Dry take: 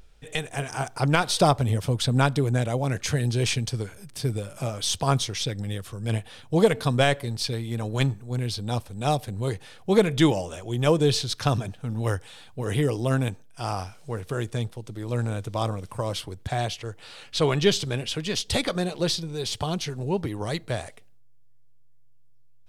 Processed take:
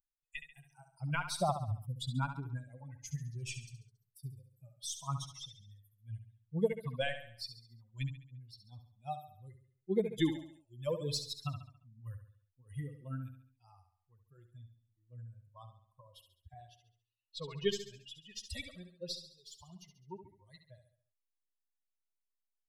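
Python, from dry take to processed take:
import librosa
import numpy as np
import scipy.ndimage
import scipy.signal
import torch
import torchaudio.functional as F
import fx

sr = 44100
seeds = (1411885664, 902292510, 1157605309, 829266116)

y = fx.bin_expand(x, sr, power=3.0)
y = fx.high_shelf(y, sr, hz=6100.0, db=11.5, at=(10.04, 11.5))
y = fx.echo_feedback(y, sr, ms=69, feedback_pct=46, wet_db=-9.5)
y = y * 10.0 ** (-8.0 / 20.0)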